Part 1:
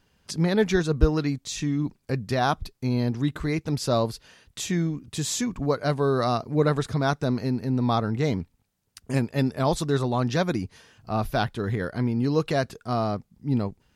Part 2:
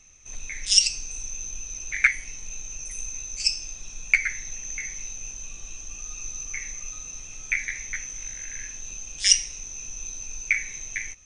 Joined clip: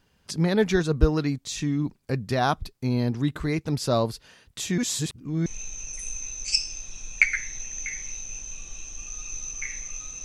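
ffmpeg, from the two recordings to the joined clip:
-filter_complex "[0:a]apad=whole_dur=10.24,atrim=end=10.24,asplit=2[a][b];[a]atrim=end=4.782[c];[b]atrim=start=4.778:end=5.462,asetpts=PTS-STARTPTS,areverse[d];[1:a]atrim=start=2.378:end=7.16[e];[c][d]acrossfade=d=0.004:c1=hsin:c2=hsin[f];[f][e]acrossfade=d=0.004:c1=hsin:c2=hsin"

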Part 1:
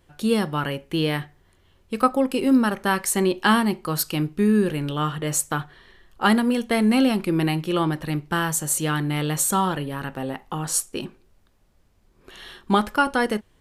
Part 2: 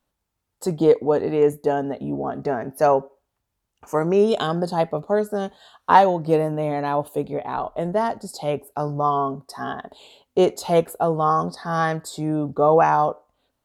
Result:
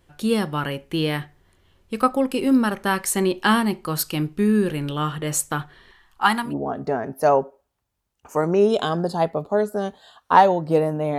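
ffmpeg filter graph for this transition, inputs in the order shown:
-filter_complex "[0:a]asettb=1/sr,asplit=3[a][b][c];[a]atrim=end=5.914[d];[b]atrim=start=5.91:end=6.54,asetpts=PTS-STARTPTS,afade=t=in:d=0.004:c=qsin,afade=t=out:st=0.626:d=0.004:c=qsin,lowshelf=f=700:t=q:w=3:g=-7[e];[c]atrim=start=6.536[f];[d][e]acrossfade=d=0.004:c1=hsin:c2=qsin[g];[g][f]acrossfade=d=0.004:c1=qsin:c2=hsin,apad=whole_dur=11.18,atrim=end=11.18,atrim=end=6.54,asetpts=PTS-STARTPTS[h];[1:a]atrim=start=2:end=6.76,asetpts=PTS-STARTPTS[i];[h][i]acrossfade=d=0.12:c1=tri:c2=tri"

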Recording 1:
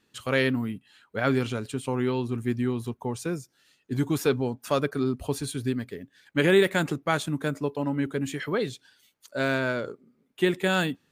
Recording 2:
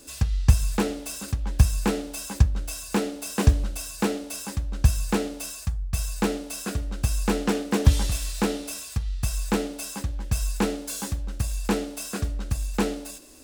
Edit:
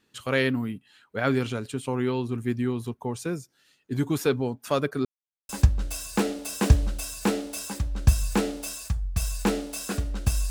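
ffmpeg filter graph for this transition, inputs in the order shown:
-filter_complex "[0:a]apad=whole_dur=10.5,atrim=end=10.5,asplit=2[a][b];[a]atrim=end=5.05,asetpts=PTS-STARTPTS,afade=t=out:st=5.046:d=0.004:c=hsin[c];[b]atrim=start=5.05:end=5.49,asetpts=PTS-STARTPTS,volume=0[d];[1:a]atrim=start=2.26:end=7.27,asetpts=PTS-STARTPTS,afade=t=in:d=0.004:c=hsin[e];[c][d][e]concat=n=3:v=0:a=1"

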